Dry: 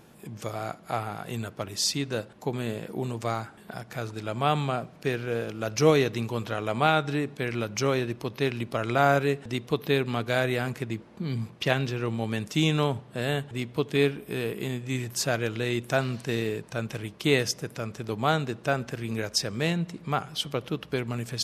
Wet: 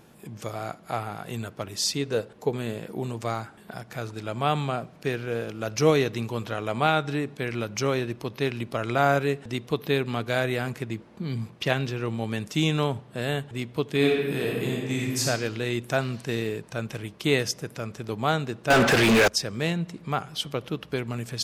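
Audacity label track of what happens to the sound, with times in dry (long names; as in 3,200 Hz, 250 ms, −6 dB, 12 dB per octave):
1.940000	2.570000	parametric band 450 Hz +10.5 dB 0.27 octaves
13.970000	15.250000	thrown reverb, RT60 1.4 s, DRR −2 dB
18.700000	19.280000	mid-hump overdrive drive 39 dB, tone 3,600 Hz, clips at −10 dBFS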